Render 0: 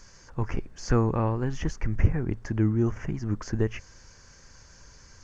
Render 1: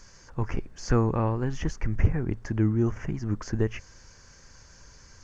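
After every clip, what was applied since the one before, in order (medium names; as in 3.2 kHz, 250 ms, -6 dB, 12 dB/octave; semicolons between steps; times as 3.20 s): hard clipper -10 dBFS, distortion -28 dB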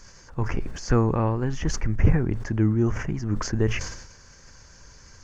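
decay stretcher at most 61 dB/s; trim +2 dB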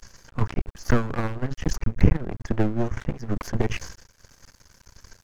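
transient shaper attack +9 dB, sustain -9 dB; half-wave rectifier; trim +2 dB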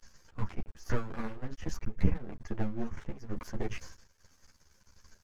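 three-phase chorus; trim -8 dB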